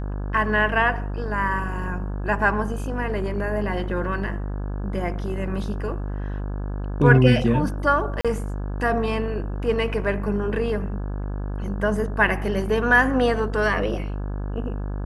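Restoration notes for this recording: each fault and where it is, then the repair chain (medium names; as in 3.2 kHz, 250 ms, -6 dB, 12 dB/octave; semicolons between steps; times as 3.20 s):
buzz 50 Hz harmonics 34 -28 dBFS
8.21–8.25 s: dropout 36 ms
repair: de-hum 50 Hz, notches 34; interpolate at 8.21 s, 36 ms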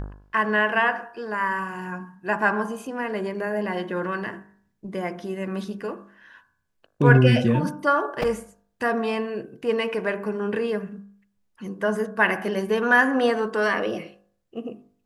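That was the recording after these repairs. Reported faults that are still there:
nothing left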